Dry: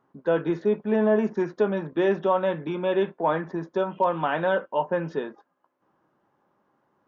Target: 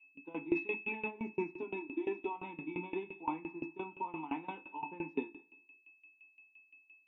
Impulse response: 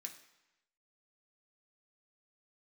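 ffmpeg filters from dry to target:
-filter_complex "[0:a]aeval=exprs='val(0)+0.02*sin(2*PI*2600*n/s)':channel_layout=same,aemphasis=mode=production:type=cd,agate=range=-33dB:threshold=-25dB:ratio=3:detection=peak,asplit=3[link_01][link_02][link_03];[link_01]afade=type=out:start_time=0.55:duration=0.02[link_04];[link_02]equalizer=frequency=2700:width=0.36:gain=15,afade=type=in:start_time=0.55:duration=0.02,afade=type=out:start_time=1.09:duration=0.02[link_05];[link_03]afade=type=in:start_time=1.09:duration=0.02[link_06];[link_04][link_05][link_06]amix=inputs=3:normalize=0,asettb=1/sr,asplit=3[link_07][link_08][link_09];[link_07]atrim=end=1.624[link_10];[link_08]atrim=start=1.62:end=2.36,asetpts=PTS-STARTPTS,afade=type=in:duration=0.004:curve=qsin,afade=type=out:start_time=0.736:duration=0.004:curve=qsin,aecho=1:1:3:0.98,atrim=end_sample=32634[link_11];[link_09]atrim=start=2.356[link_12];[link_10][link_11]acrossfade=duration=0.004:curve1=hsin:curve2=qsin[link_13];[link_13][link_12]acrossfade=duration=0.004:curve1=qsin:curve2=hsin,asplit=2[link_14][link_15];[link_15]acompressor=threshold=-29dB:ratio=6,volume=3dB[link_16];[link_14][link_16]amix=inputs=2:normalize=0,alimiter=limit=-12.5dB:level=0:latency=1:release=331,asplit=3[link_17][link_18][link_19];[link_17]bandpass=frequency=300:width_type=q:width=8,volume=0dB[link_20];[link_18]bandpass=frequency=870:width_type=q:width=8,volume=-6dB[link_21];[link_19]bandpass=frequency=2240:width_type=q:width=8,volume=-9dB[link_22];[link_20][link_21][link_22]amix=inputs=3:normalize=0,asettb=1/sr,asplit=3[link_23][link_24][link_25];[link_23]atrim=end=3.334[link_26];[link_24]atrim=start=3.33:end=4.45,asetpts=PTS-STARTPTS,afade=type=in:duration=0.004:curve=qsin,afade=type=out:start_time=1.116:duration=0.004:curve=qsin,acrossover=split=2700[link_27][link_28];[link_28]acompressor=threshold=-56dB:ratio=4:attack=1:release=60[link_29];[link_27][link_29]amix=inputs=2:normalize=0[link_30];[link_25]atrim=start=4.446[link_31];[link_26][link_30]acrossfade=duration=0.004:curve1=hsin:curve2=qsin[link_32];[link_32][link_31]acrossfade=duration=0.004:curve1=qsin:curve2=hsin,asplit=2[link_33][link_34];[1:a]atrim=start_sample=2205,adelay=8[link_35];[link_34][link_35]afir=irnorm=-1:irlink=0,volume=3.5dB[link_36];[link_33][link_36]amix=inputs=2:normalize=0,aeval=exprs='val(0)*pow(10,-19*if(lt(mod(5.8*n/s,1),2*abs(5.8)/1000),1-mod(5.8*n/s,1)/(2*abs(5.8)/1000),(mod(5.8*n/s,1)-2*abs(5.8)/1000)/(1-2*abs(5.8)/1000))/20)':channel_layout=same,volume=3dB"

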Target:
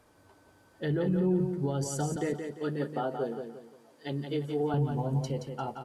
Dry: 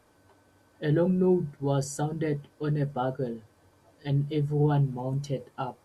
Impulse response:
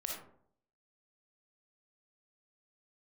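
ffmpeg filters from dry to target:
-filter_complex "[0:a]asettb=1/sr,asplit=3[link_01][link_02][link_03];[link_01]atrim=end=2.164[link_04];[link_02]atrim=start=2.16:end=4.74,asetpts=PTS-STARTPTS,afade=type=in:duration=0.004:curve=qsin,afade=type=out:start_time=2.576:duration=0.004:curve=qsin,highpass=260[link_05];[link_03]atrim=start=4.736[link_06];[link_04][link_05]acrossfade=duration=0.004:curve1=hsin:curve2=qsin[link_07];[link_07][link_06]acrossfade=duration=0.004:curve1=qsin:curve2=hsin,alimiter=limit=-22.5dB:level=0:latency=1:release=76,aecho=1:1:174|348|522|696:0.473|0.166|0.058|0.0203"

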